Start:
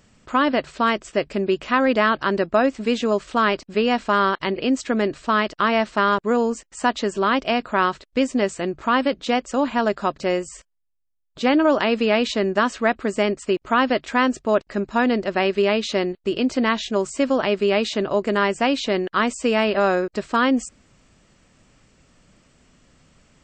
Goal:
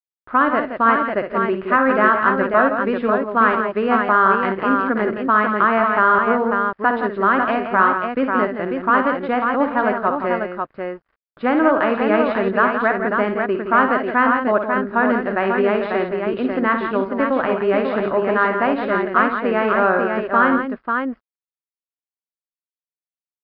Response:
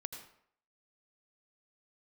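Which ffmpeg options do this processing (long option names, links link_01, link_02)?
-af "aresample=11025,aeval=exprs='sgn(val(0))*max(abs(val(0))-0.00531,0)':channel_layout=same,aresample=44100,lowpass=frequency=1500:width_type=q:width=2.2,aecho=1:1:57|82|142|169|543:0.398|0.112|0.119|0.398|0.562,volume=-1dB"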